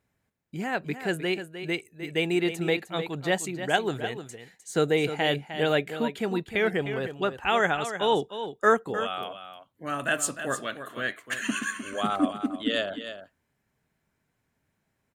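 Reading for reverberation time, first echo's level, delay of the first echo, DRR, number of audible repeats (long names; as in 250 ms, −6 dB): no reverb audible, −10.5 dB, 306 ms, no reverb audible, 1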